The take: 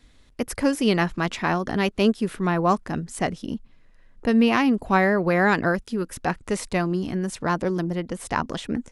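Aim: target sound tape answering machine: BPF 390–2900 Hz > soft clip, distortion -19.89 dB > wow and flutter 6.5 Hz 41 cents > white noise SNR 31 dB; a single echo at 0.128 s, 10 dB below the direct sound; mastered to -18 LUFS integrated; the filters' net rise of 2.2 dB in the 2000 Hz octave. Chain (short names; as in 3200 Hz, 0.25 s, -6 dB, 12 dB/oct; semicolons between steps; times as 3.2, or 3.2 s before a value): BPF 390–2900 Hz; bell 2000 Hz +3.5 dB; echo 0.128 s -10 dB; soft clip -9 dBFS; wow and flutter 6.5 Hz 41 cents; white noise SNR 31 dB; gain +8 dB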